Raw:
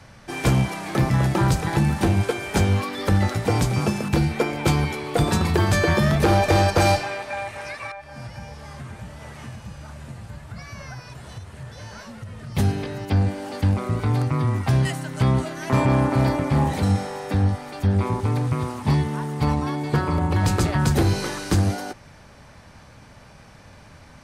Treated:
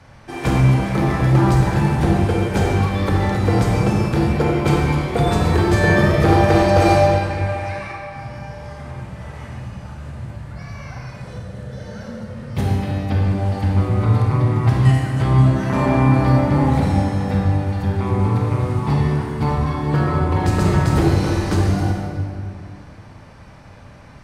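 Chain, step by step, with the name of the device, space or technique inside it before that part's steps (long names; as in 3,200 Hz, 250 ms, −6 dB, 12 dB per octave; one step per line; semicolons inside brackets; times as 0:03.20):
0:11.16–0:12.30: thirty-one-band graphic EQ 200 Hz +11 dB, 500 Hz +11 dB, 1,000 Hz −9 dB, 2,500 Hz −6 dB
swimming-pool hall (convolution reverb RT60 2.2 s, pre-delay 28 ms, DRR −2 dB; high-shelf EQ 3,600 Hz −7.5 dB)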